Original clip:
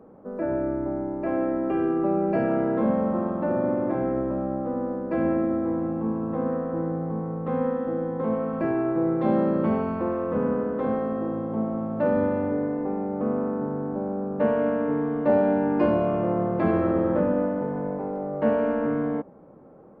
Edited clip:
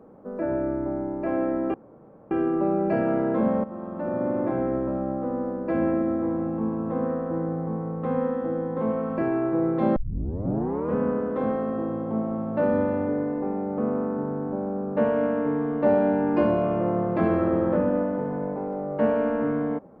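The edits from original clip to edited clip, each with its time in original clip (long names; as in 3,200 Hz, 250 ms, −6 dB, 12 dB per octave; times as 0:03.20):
0:01.74: splice in room tone 0.57 s
0:03.07–0:03.84: fade in, from −14.5 dB
0:09.39: tape start 0.99 s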